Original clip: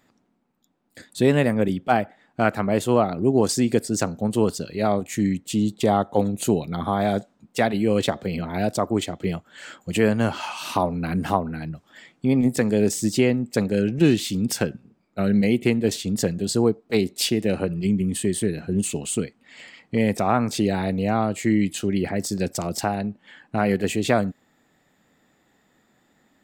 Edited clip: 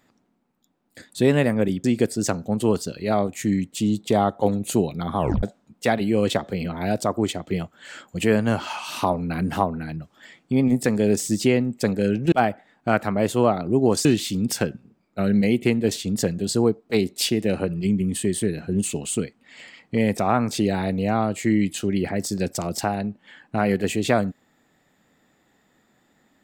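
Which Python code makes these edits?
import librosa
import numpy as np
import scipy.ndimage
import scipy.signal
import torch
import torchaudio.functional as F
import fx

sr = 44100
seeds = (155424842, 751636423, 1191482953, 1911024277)

y = fx.edit(x, sr, fx.move(start_s=1.84, length_s=1.73, to_s=14.05),
    fx.tape_stop(start_s=6.91, length_s=0.25), tone=tone)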